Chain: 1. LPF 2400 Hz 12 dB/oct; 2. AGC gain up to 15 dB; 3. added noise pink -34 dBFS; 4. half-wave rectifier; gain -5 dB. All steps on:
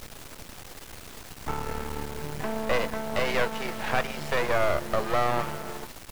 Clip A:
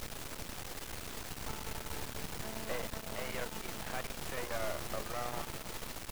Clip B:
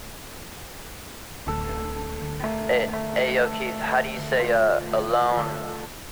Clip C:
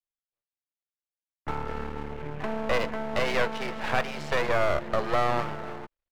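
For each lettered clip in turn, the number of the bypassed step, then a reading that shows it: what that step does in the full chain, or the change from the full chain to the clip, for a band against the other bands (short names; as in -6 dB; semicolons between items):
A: 2, momentary loudness spread change -12 LU; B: 4, distortion 0 dB; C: 3, 8 kHz band -7.0 dB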